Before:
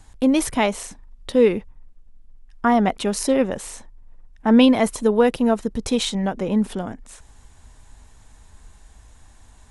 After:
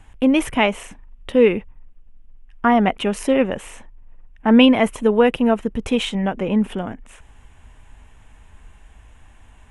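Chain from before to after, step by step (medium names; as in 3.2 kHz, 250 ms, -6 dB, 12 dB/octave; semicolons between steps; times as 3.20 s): resonant high shelf 3.5 kHz -7 dB, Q 3; trim +1.5 dB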